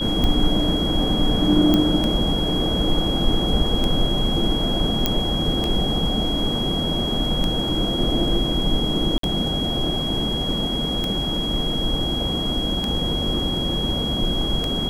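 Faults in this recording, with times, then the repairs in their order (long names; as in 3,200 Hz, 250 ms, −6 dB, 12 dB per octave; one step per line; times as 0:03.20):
scratch tick 33 1/3 rpm −10 dBFS
whistle 3,300 Hz −25 dBFS
0:01.74: click −6 dBFS
0:05.06: click −3 dBFS
0:09.18–0:09.23: drop-out 53 ms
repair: click removal
notch filter 3,300 Hz, Q 30
repair the gap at 0:09.18, 53 ms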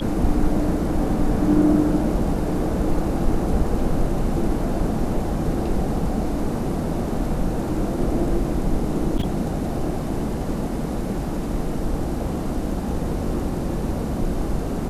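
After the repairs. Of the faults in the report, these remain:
none of them is left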